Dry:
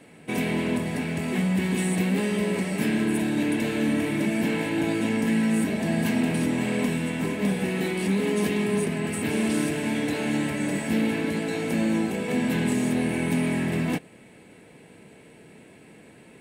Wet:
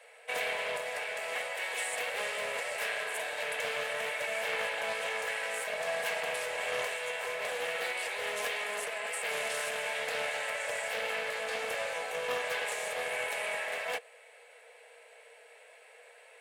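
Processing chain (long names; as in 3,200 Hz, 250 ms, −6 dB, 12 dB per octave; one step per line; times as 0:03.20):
Chebyshev high-pass with heavy ripple 460 Hz, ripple 3 dB
highs frequency-modulated by the lows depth 0.18 ms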